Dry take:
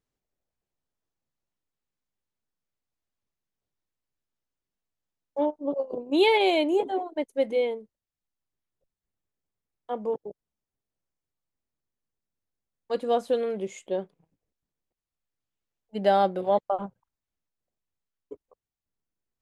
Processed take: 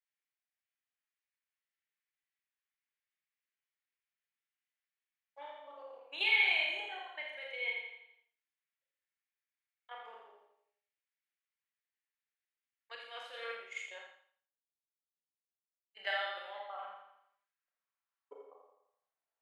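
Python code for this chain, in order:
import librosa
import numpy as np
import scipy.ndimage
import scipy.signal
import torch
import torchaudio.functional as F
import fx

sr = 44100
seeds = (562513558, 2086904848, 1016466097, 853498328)

y = fx.bass_treble(x, sr, bass_db=-13, treble_db=-15)
y = fx.level_steps(y, sr, step_db=10)
y = fx.filter_sweep_highpass(y, sr, from_hz=2000.0, to_hz=690.0, start_s=17.06, end_s=18.66, q=1.9)
y = fx.echo_feedback(y, sr, ms=84, feedback_pct=48, wet_db=-6.0)
y = fx.rev_schroeder(y, sr, rt60_s=0.43, comb_ms=28, drr_db=0.0)
y = fx.band_widen(y, sr, depth_pct=100, at=(12.95, 15.97))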